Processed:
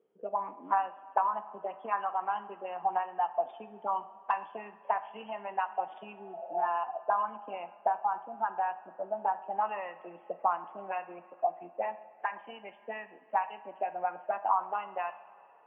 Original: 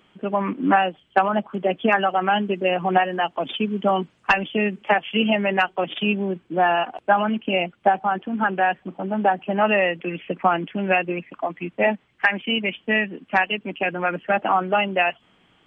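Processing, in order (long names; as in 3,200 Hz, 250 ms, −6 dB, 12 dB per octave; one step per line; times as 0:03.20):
healed spectral selection 0:06.14–0:06.65, 500–1,000 Hz both
envelope filter 450–1,000 Hz, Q 8.5, up, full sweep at −16.5 dBFS
coupled-rooms reverb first 0.52 s, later 3.1 s, from −14 dB, DRR 10 dB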